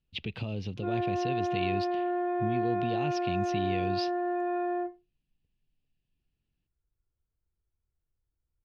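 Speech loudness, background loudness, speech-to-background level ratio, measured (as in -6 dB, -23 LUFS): -36.0 LUFS, -31.0 LUFS, -5.0 dB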